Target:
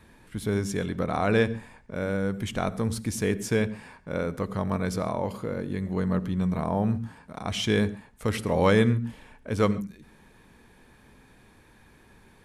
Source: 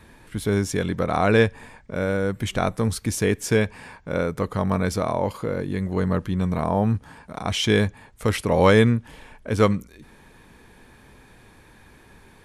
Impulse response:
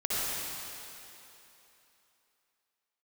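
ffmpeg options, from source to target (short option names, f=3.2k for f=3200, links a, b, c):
-filter_complex "[0:a]asplit=2[a][b];[b]equalizer=f=210:w=0.87:g=13.5[c];[1:a]atrim=start_sample=2205,atrim=end_sample=6615[d];[c][d]afir=irnorm=-1:irlink=0,volume=-23dB[e];[a][e]amix=inputs=2:normalize=0,volume=-6dB"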